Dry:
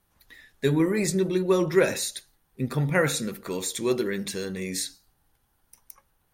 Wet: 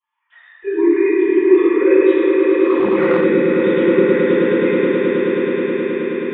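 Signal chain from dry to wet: sine-wave speech; compressor 3:1, threshold -24 dBFS, peak gain reduction 10 dB; swelling echo 0.106 s, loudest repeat 8, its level -8 dB; reverb RT60 2.9 s, pre-delay 3 ms, DRR -20 dB; 2.64–3.24 core saturation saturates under 650 Hz; gain -11.5 dB

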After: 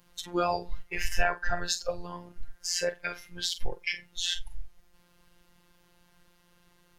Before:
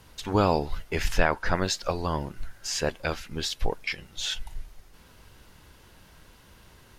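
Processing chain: 1.18–2.01 notch 2100 Hz, Q 6.3; flutter echo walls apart 7.9 m, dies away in 0.25 s; in parallel at -1.5 dB: compressor, threshold -38 dBFS, peak gain reduction 21.5 dB; on the sum: robotiser 175 Hz; spectral noise reduction 13 dB

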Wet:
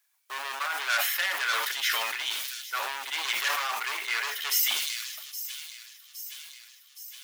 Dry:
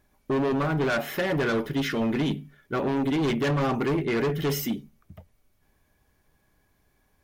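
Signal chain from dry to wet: G.711 law mismatch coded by A; Bessel high-pass 1600 Hz, order 4; high shelf 4400 Hz +6 dB; on a send: thin delay 0.817 s, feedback 64%, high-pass 4700 Hz, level -11 dB; on the sum: sustainer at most 30 dB/s; gain +5 dB

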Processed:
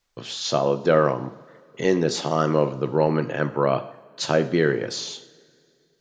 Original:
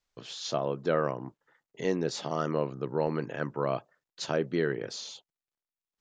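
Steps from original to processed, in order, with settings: two-slope reverb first 0.61 s, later 2.6 s, from -18 dB, DRR 9 dB; gain +8.5 dB

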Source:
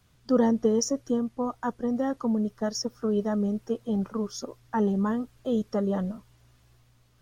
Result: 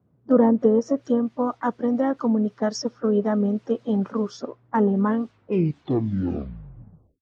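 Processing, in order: tape stop at the end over 2.13 s; HPF 150 Hz 12 dB/oct; treble ducked by the level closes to 1300 Hz, closed at -20 dBFS; harmoniser +3 st -17 dB; low-pass opened by the level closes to 470 Hz, open at -25.5 dBFS; gain +5.5 dB

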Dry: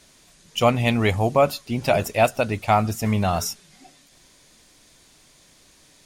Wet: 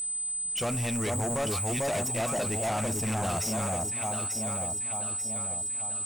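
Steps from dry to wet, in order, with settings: whine 8100 Hz -25 dBFS; on a send: echo with dull and thin repeats by turns 0.445 s, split 1000 Hz, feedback 69%, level -3.5 dB; on the sum: limiter -10.5 dBFS, peak gain reduction 6.5 dB; hard clip -22 dBFS, distortion -8 dB; gain -4.5 dB

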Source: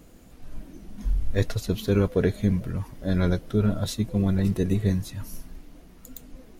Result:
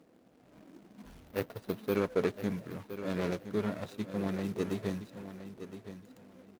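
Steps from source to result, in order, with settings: median filter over 41 samples; 1.28–1.96 careless resampling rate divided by 3×, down filtered, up hold; HPF 160 Hz 12 dB/oct; low shelf 340 Hz -12 dB; feedback echo 1.016 s, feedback 21%, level -11.5 dB

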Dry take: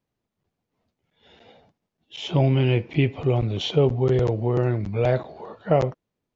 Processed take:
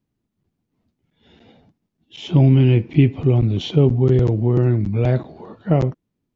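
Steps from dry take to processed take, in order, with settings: resonant low shelf 390 Hz +7.5 dB, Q 1.5; gain -1 dB

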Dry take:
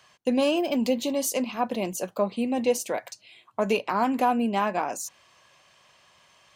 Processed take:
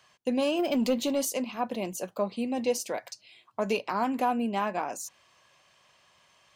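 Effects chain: 0.59–1.25 sample leveller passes 1; 2.2–3.99 bell 5000 Hz +6 dB 0.48 oct; gain -4 dB

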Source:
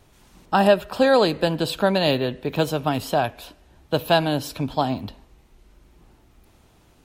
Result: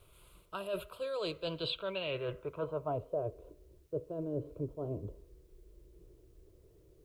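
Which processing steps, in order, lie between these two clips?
fixed phaser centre 1200 Hz, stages 8; reverse; compressor 12:1, threshold -30 dBFS, peak gain reduction 17.5 dB; reverse; low-pass sweep 11000 Hz -> 400 Hz, 0.95–3.36; added noise white -75 dBFS; gain -4.5 dB

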